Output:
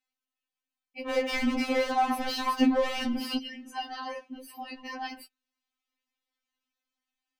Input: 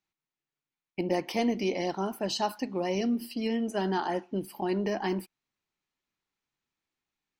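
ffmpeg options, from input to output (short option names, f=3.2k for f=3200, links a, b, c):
-filter_complex "[0:a]equalizer=f=3.1k:t=o:w=1.5:g=3.5,asettb=1/sr,asplit=3[a][b][c];[a]atrim=end=1.074[d];[b]atrim=start=1.07:end=3.37,asetpts=PTS-STARTPTS,afade=t=in:d=0.004:c=qsin,afade=t=out:st=2.296:d=0.004:c=qsin,asplit=2[e][f];[f]highpass=f=720:p=1,volume=35dB,asoftclip=type=tanh:threshold=-15dB[g];[e][g]amix=inputs=2:normalize=0,lowpass=f=1.1k:p=1,volume=-6dB[h];[c]atrim=start=3.366[i];[d][h]acrossfade=d=0.004:c1=hsin:c2=qsin[j];[j][i]acrossfade=d=0.004:c1=qsin:c2=hsin,afftfilt=real='re*3.46*eq(mod(b,12),0)':imag='im*3.46*eq(mod(b,12),0)':win_size=2048:overlap=0.75"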